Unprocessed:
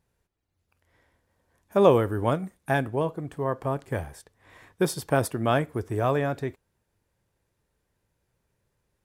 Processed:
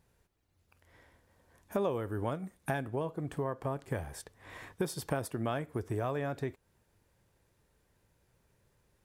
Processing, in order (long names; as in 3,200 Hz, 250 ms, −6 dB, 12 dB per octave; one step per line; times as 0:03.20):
downward compressor 4 to 1, threshold −37 dBFS, peak gain reduction 20.5 dB
level +4 dB